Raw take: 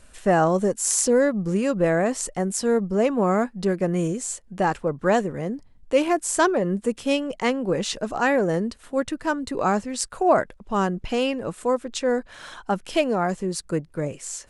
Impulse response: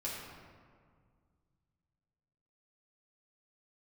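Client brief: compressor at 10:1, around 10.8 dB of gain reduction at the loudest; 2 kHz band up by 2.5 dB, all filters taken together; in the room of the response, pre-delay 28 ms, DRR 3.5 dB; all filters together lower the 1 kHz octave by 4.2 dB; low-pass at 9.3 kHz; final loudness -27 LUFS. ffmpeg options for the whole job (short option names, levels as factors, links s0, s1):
-filter_complex "[0:a]lowpass=9300,equalizer=f=1000:t=o:g=-7.5,equalizer=f=2000:t=o:g=6,acompressor=threshold=0.0501:ratio=10,asplit=2[s0][s1];[1:a]atrim=start_sample=2205,adelay=28[s2];[s1][s2]afir=irnorm=-1:irlink=0,volume=0.531[s3];[s0][s3]amix=inputs=2:normalize=0,volume=1.33"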